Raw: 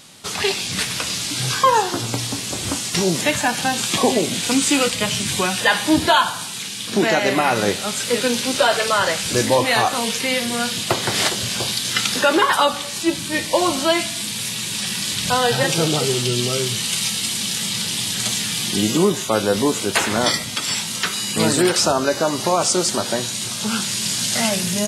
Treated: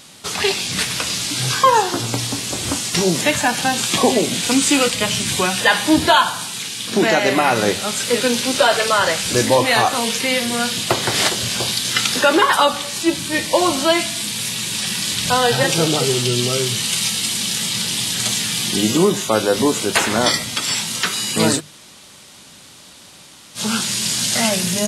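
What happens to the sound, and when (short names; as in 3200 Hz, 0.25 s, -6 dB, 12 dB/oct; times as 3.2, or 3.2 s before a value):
21.58–23.57 room tone, crossfade 0.06 s
whole clip: notches 50/100/150/200 Hz; gain +2 dB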